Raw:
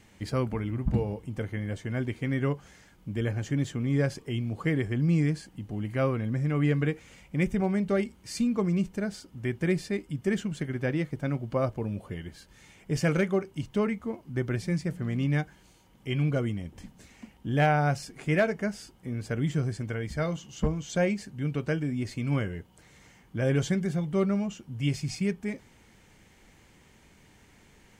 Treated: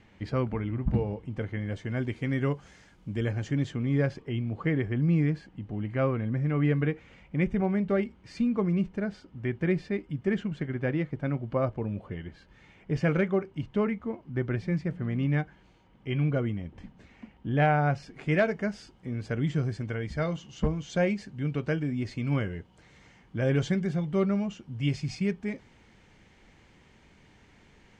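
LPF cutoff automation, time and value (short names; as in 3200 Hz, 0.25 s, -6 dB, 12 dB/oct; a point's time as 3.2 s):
1.21 s 3300 Hz
2.23 s 6900 Hz
3.22 s 6900 Hz
4.28 s 2800 Hz
17.92 s 2800 Hz
18.37 s 4900 Hz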